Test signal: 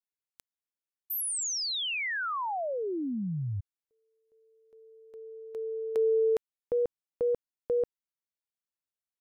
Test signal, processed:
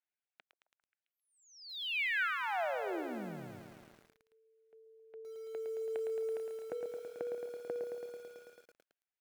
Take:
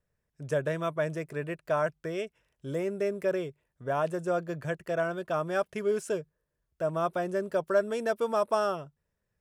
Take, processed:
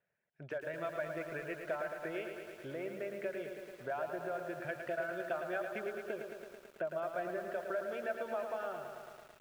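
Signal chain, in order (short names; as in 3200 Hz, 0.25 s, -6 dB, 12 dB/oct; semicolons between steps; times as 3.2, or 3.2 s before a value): compressor 8:1, threshold -37 dBFS; speaker cabinet 240–3200 Hz, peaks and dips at 280 Hz -8 dB, 450 Hz -5 dB, 690 Hz +4 dB, 1100 Hz -8 dB, 1500 Hz +6 dB, 2300 Hz +4 dB; reverb removal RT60 0.78 s; delay with a stepping band-pass 0.133 s, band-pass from 450 Hz, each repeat 0.7 oct, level -12 dB; dynamic EQ 320 Hz, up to +4 dB, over -60 dBFS, Q 2.8; lo-fi delay 0.11 s, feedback 80%, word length 10-bit, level -6.5 dB; gain +1 dB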